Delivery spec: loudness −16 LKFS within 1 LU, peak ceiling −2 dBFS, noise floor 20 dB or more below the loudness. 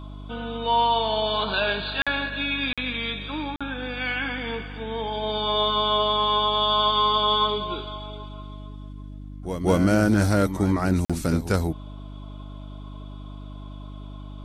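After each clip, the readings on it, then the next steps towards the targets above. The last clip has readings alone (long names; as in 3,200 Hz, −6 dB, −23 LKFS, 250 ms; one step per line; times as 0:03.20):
number of dropouts 4; longest dropout 46 ms; mains hum 50 Hz; hum harmonics up to 300 Hz; level of the hum −35 dBFS; integrated loudness −23.5 LKFS; sample peak −8.5 dBFS; target loudness −16.0 LKFS
→ repair the gap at 0:02.02/0:02.73/0:03.56/0:11.05, 46 ms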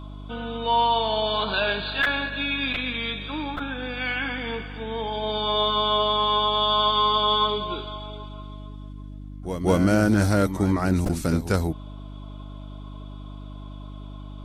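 number of dropouts 0; mains hum 50 Hz; hum harmonics up to 300 Hz; level of the hum −35 dBFS
→ hum removal 50 Hz, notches 6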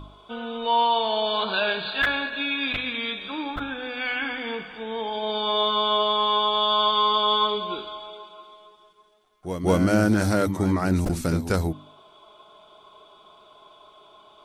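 mains hum none found; integrated loudness −23.5 LKFS; sample peak −8.0 dBFS; target loudness −16.0 LKFS
→ level +7.5 dB
brickwall limiter −2 dBFS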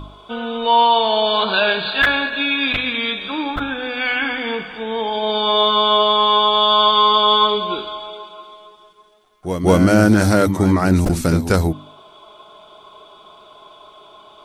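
integrated loudness −16.0 LKFS; sample peak −2.0 dBFS; background noise floor −47 dBFS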